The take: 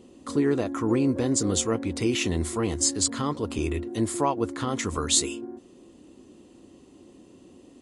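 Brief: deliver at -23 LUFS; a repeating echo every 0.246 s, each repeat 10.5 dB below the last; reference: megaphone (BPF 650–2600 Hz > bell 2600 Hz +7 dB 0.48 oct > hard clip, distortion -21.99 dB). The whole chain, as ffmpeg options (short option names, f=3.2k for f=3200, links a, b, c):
-af "highpass=650,lowpass=2.6k,equalizer=f=2.6k:t=o:w=0.48:g=7,aecho=1:1:246|492|738:0.299|0.0896|0.0269,asoftclip=type=hard:threshold=-19.5dB,volume=11dB"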